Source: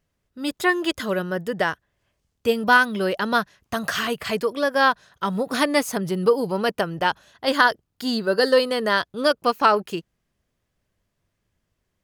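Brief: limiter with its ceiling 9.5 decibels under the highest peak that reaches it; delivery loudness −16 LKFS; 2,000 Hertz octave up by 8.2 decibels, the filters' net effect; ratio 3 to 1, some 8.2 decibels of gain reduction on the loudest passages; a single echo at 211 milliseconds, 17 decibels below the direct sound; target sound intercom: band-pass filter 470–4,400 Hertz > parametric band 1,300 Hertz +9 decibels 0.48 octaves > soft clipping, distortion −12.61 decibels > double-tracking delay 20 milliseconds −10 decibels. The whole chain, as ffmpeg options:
ffmpeg -i in.wav -filter_complex "[0:a]equalizer=frequency=2000:width_type=o:gain=6,acompressor=threshold=-19dB:ratio=3,alimiter=limit=-17dB:level=0:latency=1,highpass=470,lowpass=4400,equalizer=frequency=1300:width_type=o:width=0.48:gain=9,aecho=1:1:211:0.141,asoftclip=threshold=-20dB,asplit=2[link_01][link_02];[link_02]adelay=20,volume=-10dB[link_03];[link_01][link_03]amix=inputs=2:normalize=0,volume=13dB" out.wav

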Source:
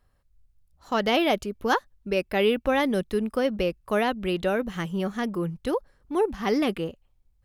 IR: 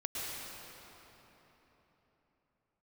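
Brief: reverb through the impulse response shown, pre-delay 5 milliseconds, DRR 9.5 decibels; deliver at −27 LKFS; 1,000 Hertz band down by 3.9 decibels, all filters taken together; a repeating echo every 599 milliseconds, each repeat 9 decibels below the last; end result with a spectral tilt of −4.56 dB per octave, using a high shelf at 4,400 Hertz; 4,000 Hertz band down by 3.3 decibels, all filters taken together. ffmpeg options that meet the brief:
-filter_complex "[0:a]equalizer=frequency=1000:width_type=o:gain=-5.5,equalizer=frequency=4000:width_type=o:gain=-9,highshelf=frequency=4400:gain=8.5,aecho=1:1:599|1198|1797|2396:0.355|0.124|0.0435|0.0152,asplit=2[link_01][link_02];[1:a]atrim=start_sample=2205,adelay=5[link_03];[link_02][link_03]afir=irnorm=-1:irlink=0,volume=-13dB[link_04];[link_01][link_04]amix=inputs=2:normalize=0,volume=-0.5dB"

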